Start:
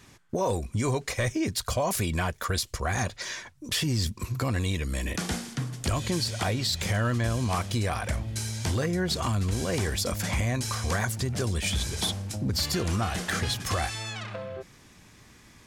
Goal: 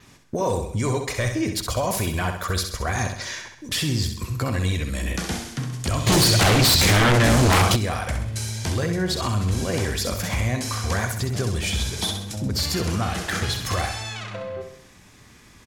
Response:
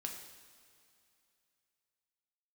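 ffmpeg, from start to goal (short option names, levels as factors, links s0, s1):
-filter_complex "[0:a]adynamicequalizer=threshold=0.00224:dfrequency=8500:dqfactor=4.2:tfrequency=8500:tqfactor=4.2:attack=5:release=100:ratio=0.375:range=2:mode=cutabove:tftype=bell,aecho=1:1:65|130|195|260|325|390:0.447|0.219|0.107|0.0526|0.0258|0.0126,asplit=3[s0][s1][s2];[s0]afade=t=out:st=6.06:d=0.02[s3];[s1]aeval=exprs='0.168*sin(PI/2*3.16*val(0)/0.168)':c=same,afade=t=in:st=6.06:d=0.02,afade=t=out:st=7.75:d=0.02[s4];[s2]afade=t=in:st=7.75:d=0.02[s5];[s3][s4][s5]amix=inputs=3:normalize=0,volume=1.33"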